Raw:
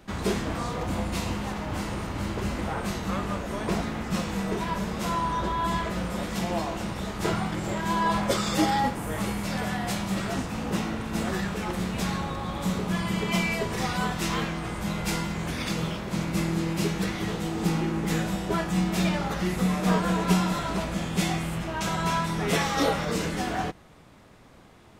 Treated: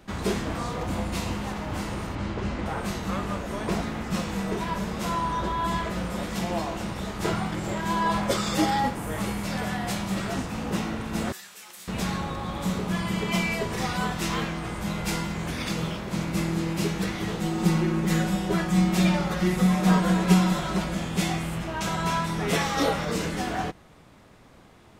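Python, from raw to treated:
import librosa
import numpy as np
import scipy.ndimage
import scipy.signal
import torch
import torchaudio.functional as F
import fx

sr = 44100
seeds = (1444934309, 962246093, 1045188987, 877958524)

y = fx.air_absorb(x, sr, metres=91.0, at=(2.15, 2.66))
y = fx.differentiator(y, sr, at=(11.32, 11.88))
y = fx.comb(y, sr, ms=5.5, depth=0.65, at=(17.4, 20.95))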